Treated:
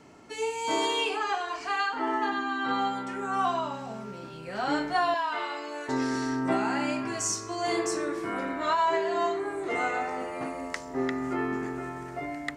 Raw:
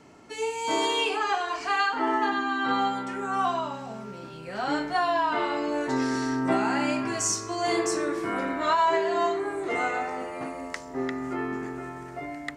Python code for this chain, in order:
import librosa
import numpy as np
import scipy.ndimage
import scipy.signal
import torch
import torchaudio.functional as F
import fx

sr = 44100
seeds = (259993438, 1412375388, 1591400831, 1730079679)

y = fx.highpass(x, sr, hz=1100.0, slope=6, at=(5.14, 5.89))
y = fx.rider(y, sr, range_db=3, speed_s=2.0)
y = F.gain(torch.from_numpy(y), -2.0).numpy()